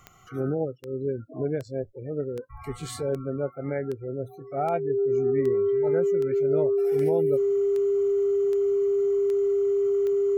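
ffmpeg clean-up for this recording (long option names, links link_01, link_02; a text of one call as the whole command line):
ffmpeg -i in.wav -af "adeclick=threshold=4,bandreject=frequency=400:width=30" out.wav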